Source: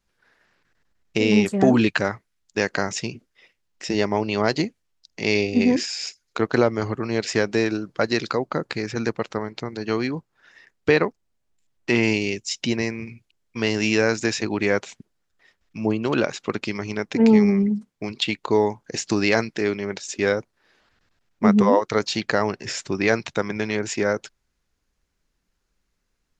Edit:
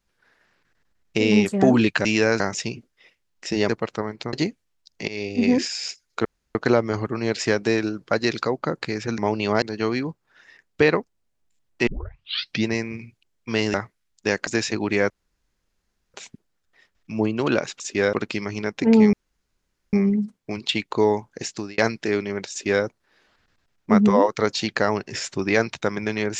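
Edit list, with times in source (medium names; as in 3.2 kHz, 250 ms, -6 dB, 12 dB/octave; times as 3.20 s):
2.05–2.78 s: swap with 13.82–14.17 s
4.07–4.51 s: swap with 9.06–9.70 s
5.26–5.69 s: fade in, from -18.5 dB
6.43 s: insert room tone 0.30 s
11.95 s: tape start 0.80 s
14.80 s: insert room tone 1.04 s
17.46 s: insert room tone 0.80 s
18.85–19.31 s: fade out
20.04–20.37 s: copy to 16.46 s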